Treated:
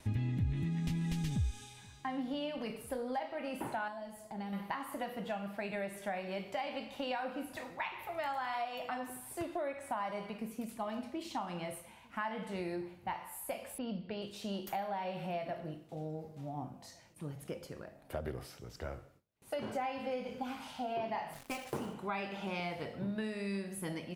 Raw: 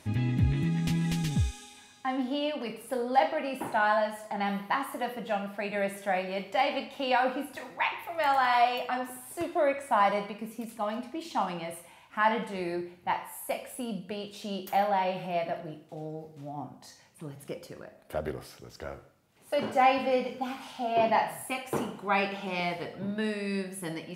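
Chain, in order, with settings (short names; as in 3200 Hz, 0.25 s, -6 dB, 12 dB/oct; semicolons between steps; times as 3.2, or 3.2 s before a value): 21.33–21.94 switching dead time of 0.081 ms; compressor 5:1, threshold -32 dBFS, peak gain reduction 13.5 dB; 3.88–4.53 bell 1600 Hz -10.5 dB 2.8 oct; 13.78–14.22 Chebyshev low-pass 5400 Hz, order 10; outdoor echo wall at 250 m, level -25 dB; gate with hold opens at -48 dBFS; low shelf 92 Hz +12 dB; gain -3.5 dB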